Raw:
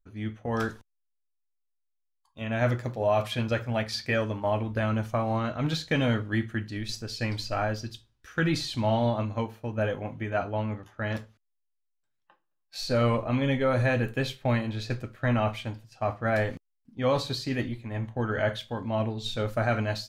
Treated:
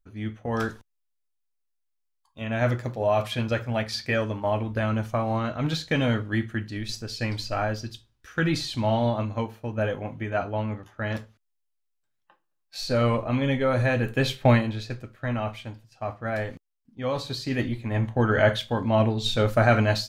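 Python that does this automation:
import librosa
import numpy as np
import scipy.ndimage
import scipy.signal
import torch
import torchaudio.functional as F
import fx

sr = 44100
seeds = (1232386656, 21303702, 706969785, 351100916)

y = fx.gain(x, sr, db=fx.line((14.0, 1.5), (14.45, 9.0), (14.93, -3.0), (17.14, -3.0), (17.88, 7.0)))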